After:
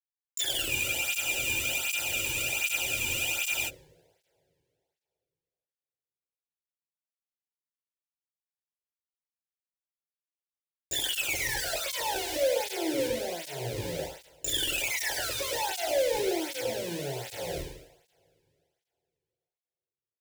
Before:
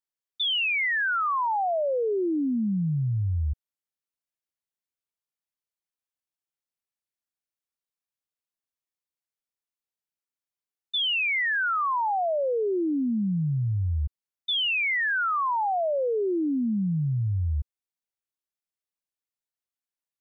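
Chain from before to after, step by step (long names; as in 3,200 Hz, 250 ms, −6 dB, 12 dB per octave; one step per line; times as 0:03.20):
hum removal 238.1 Hz, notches 2
pitch-shifted copies added −12 semitones −17 dB, +12 semitones −6 dB
comb filter 5.8 ms, depth 92%
in parallel at −2.5 dB: brickwall limiter −24 dBFS, peak gain reduction 11.5 dB
on the sum: treble cut that deepens with the level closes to 1,700 Hz, closed at −15.5 dBFS
comparator with hysteresis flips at −26 dBFS
phaser with its sweep stopped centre 490 Hz, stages 4
repeating echo 105 ms, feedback 31%, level −9 dB
coupled-rooms reverb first 0.63 s, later 2.9 s, from −25 dB, DRR 1 dB
frozen spectrum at 0:00.71, 2.97 s
through-zero flanger with one copy inverted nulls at 1.3 Hz, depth 1.6 ms
level −3 dB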